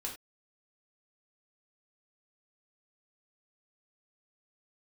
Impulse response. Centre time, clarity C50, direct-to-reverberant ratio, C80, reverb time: 21 ms, 8.0 dB, −2.0 dB, 13.5 dB, non-exponential decay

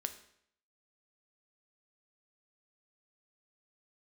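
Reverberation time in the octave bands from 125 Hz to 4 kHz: 0.70, 0.65, 0.70, 0.65, 0.65, 0.60 seconds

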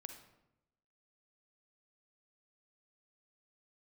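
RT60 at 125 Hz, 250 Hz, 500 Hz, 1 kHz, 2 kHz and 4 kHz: 1.0, 1.0, 0.95, 0.85, 0.70, 0.60 seconds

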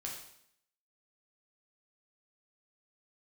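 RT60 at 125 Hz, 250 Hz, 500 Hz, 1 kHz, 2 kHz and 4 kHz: 0.70, 0.75, 0.70, 0.70, 0.70, 0.70 seconds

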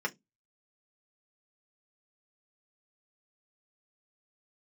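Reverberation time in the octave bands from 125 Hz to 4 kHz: 0.30, 0.30, 0.20, 0.15, 0.15, 0.15 seconds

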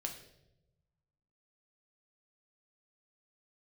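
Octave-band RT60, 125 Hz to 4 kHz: 1.8, 1.3, 1.1, 0.70, 0.65, 0.70 seconds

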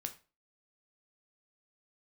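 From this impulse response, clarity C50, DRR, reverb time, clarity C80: 14.0 dB, 5.5 dB, 0.35 s, 19.5 dB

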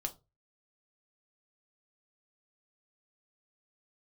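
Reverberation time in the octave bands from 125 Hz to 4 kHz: 0.45, 0.25, 0.30, 0.25, 0.20, 0.20 seconds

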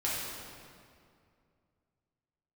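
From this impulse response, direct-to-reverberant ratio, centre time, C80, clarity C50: −8.0 dB, 127 ms, 0.5 dB, −2.0 dB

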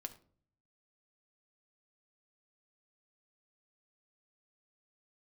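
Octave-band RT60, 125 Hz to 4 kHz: 1.0, 0.75, 0.55, 0.40, 0.35, 0.30 seconds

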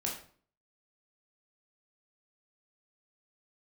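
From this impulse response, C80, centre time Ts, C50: 10.0 dB, 31 ms, 5.5 dB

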